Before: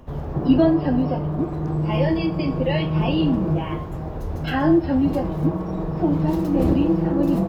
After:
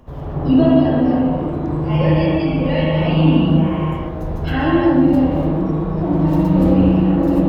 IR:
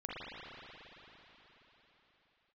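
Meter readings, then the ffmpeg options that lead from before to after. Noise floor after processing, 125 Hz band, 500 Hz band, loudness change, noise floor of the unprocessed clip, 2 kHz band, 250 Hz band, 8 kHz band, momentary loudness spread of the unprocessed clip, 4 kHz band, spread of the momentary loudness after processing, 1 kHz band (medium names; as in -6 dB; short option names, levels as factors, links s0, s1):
-26 dBFS, +6.0 dB, +4.5 dB, +5.5 dB, -30 dBFS, +5.0 dB, +5.5 dB, no reading, 9 LU, +4.0 dB, 8 LU, +5.0 dB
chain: -filter_complex "[1:a]atrim=start_sample=2205,afade=t=out:st=0.41:d=0.01,atrim=end_sample=18522[s0];[0:a][s0]afir=irnorm=-1:irlink=0,volume=1.5"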